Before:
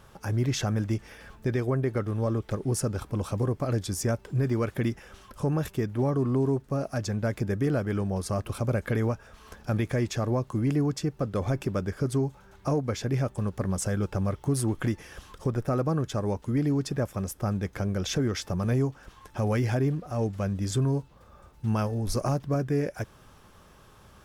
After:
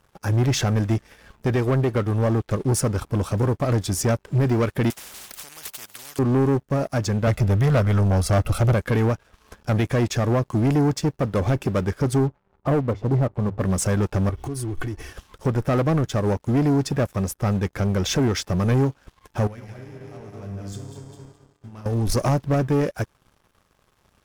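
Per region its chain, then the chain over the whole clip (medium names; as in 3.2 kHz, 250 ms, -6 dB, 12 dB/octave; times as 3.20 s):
4.90–6.19 s: tilt EQ +3 dB/octave + spectrum-flattening compressor 10:1
7.27–8.74 s: bass shelf 62 Hz +9 dB + comb 1.5 ms, depth 87%
12.18–13.61 s: Savitzky-Golay filter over 65 samples + hum notches 50/100 Hz
14.29–15.12 s: bass shelf 130 Hz +10.5 dB + compression, threshold -33 dBFS + comb 2.7 ms, depth 82%
19.47–21.86 s: backward echo that repeats 105 ms, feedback 68%, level -2.5 dB + compression 12:1, threshold -26 dBFS + feedback comb 100 Hz, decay 1.6 s, mix 80%
whole clip: waveshaping leveller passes 3; upward expansion 1.5:1, over -41 dBFS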